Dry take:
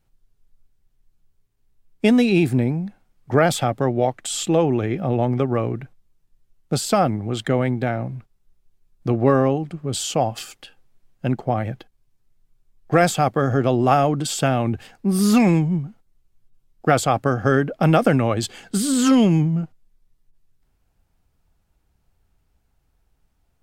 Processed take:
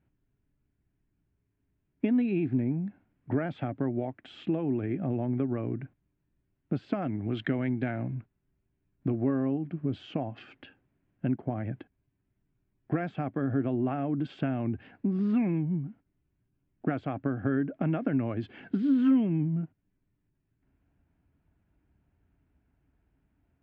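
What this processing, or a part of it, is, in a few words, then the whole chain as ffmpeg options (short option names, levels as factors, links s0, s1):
bass amplifier: -filter_complex "[0:a]acompressor=threshold=0.0316:ratio=3,highpass=63,equalizer=f=280:t=q:w=4:g=8,equalizer=f=500:t=q:w=4:g=-7,equalizer=f=810:t=q:w=4:g=-7,equalizer=f=1200:t=q:w=4:g=-8,equalizer=f=2000:t=q:w=4:g=-3,lowpass=f=2300:w=0.5412,lowpass=f=2300:w=1.3066,asettb=1/sr,asplit=3[s0][s1][s2];[s0]atrim=end=7.024[s3];[s1]atrim=start=7.02:end=8.15,asetpts=PTS-STARTPTS,afade=t=in:d=0.004:c=qsin,afade=t=out:st=1.126:d=0.004:c=qsin,highshelf=f=2300:g=12[s4];[s2]atrim=start=8.146[s5];[s3][s4]acrossfade=d=0.004:c1=hsin:c2=qsin[s6];[s6][s5]acrossfade=d=0.004:c1=qsin:c2=hsin"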